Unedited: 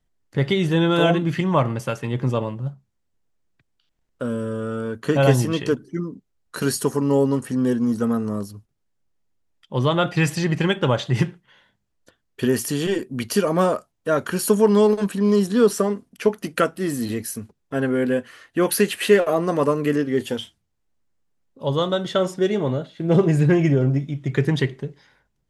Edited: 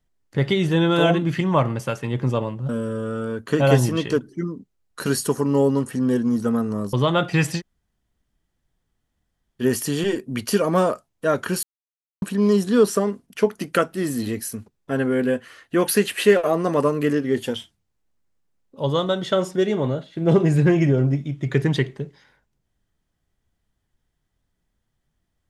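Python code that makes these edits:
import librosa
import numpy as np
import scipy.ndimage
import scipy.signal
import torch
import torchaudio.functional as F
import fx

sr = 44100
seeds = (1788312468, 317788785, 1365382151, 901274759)

y = fx.edit(x, sr, fx.cut(start_s=2.69, length_s=1.56),
    fx.cut(start_s=8.49, length_s=1.27),
    fx.room_tone_fill(start_s=10.42, length_s=2.03, crossfade_s=0.06),
    fx.silence(start_s=14.46, length_s=0.59), tone=tone)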